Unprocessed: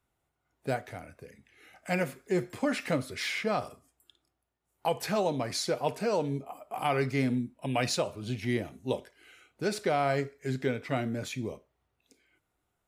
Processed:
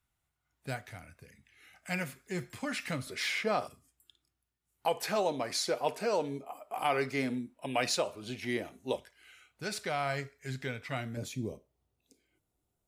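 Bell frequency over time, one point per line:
bell -11.5 dB 2.2 oct
450 Hz
from 3.07 s 73 Hz
from 3.67 s 620 Hz
from 4.86 s 110 Hz
from 8.96 s 340 Hz
from 11.17 s 1600 Hz

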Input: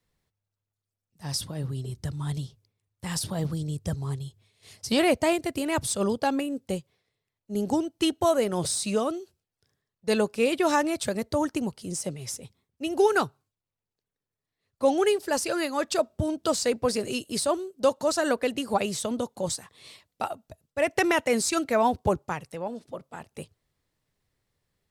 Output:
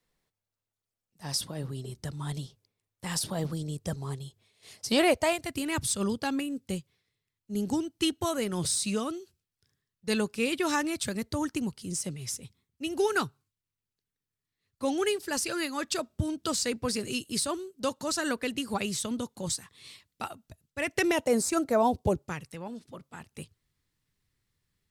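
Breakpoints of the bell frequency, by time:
bell -11 dB 1.3 oct
4.89 s 85 Hz
5.6 s 630 Hz
20.92 s 630 Hz
21.47 s 3900 Hz
22.48 s 610 Hz

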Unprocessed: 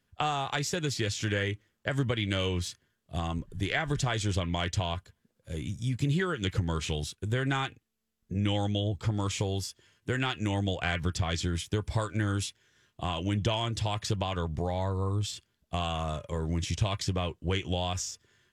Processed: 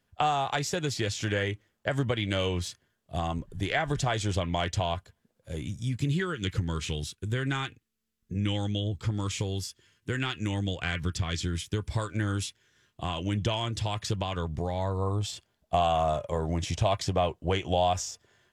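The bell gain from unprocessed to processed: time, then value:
bell 700 Hz 0.93 oct
5.51 s +5.5 dB
6.25 s -6.5 dB
11.76 s -6.5 dB
12.19 s -0.5 dB
14.74 s -0.5 dB
15.15 s +11.5 dB

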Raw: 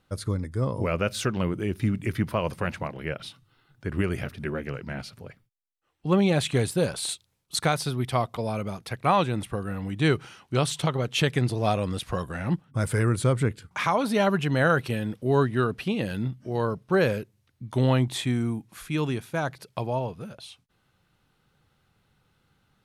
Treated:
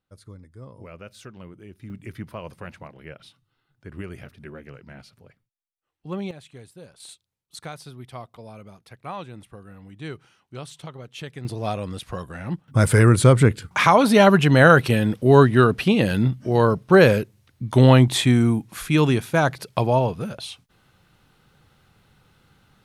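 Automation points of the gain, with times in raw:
-15.5 dB
from 1.9 s -9 dB
from 6.31 s -20 dB
from 7 s -12.5 dB
from 11.45 s -2.5 dB
from 12.68 s +9 dB

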